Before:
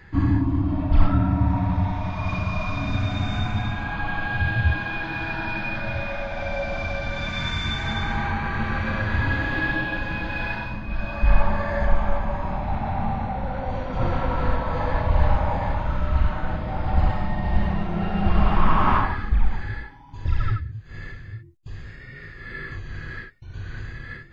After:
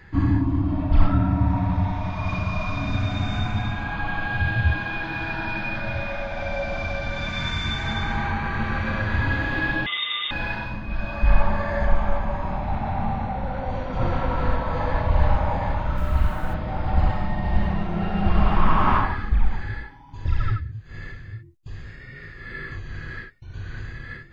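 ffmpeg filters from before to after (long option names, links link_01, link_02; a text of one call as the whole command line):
ffmpeg -i in.wav -filter_complex "[0:a]asettb=1/sr,asplit=3[link_01][link_02][link_03];[link_01]atrim=end=9.864[link_04];[link_02]atrim=start=9.86:end=10.31,asetpts=PTS-STARTPTS,afade=type=in:duration=0.004:curve=qsin,afade=type=out:start_time=0.446:duration=0.004:curve=qsin,lowpass=frequency=3100:width_type=q:width=0.5098,lowpass=frequency=3100:width_type=q:width=0.6013,lowpass=frequency=3100:width_type=q:width=0.9,lowpass=frequency=3100:width_type=q:width=2.563,afreqshift=-3700[link_05];[link_03]atrim=start=10.306[link_06];[link_04][link_05]acrossfade=duration=0.004:curve1=hsin:curve2=qsin[link_07];[link_07][link_06]acrossfade=duration=0.004:curve1=qsin:curve2=hsin,asplit=3[link_08][link_09][link_10];[link_08]afade=type=out:start_time=15.96:duration=0.02[link_11];[link_09]acrusher=bits=7:mix=0:aa=0.5,afade=type=in:start_time=15.96:duration=0.02,afade=type=out:start_time=16.53:duration=0.02[link_12];[link_10]afade=type=in:start_time=16.53:duration=0.02[link_13];[link_11][link_12][link_13]amix=inputs=3:normalize=0" out.wav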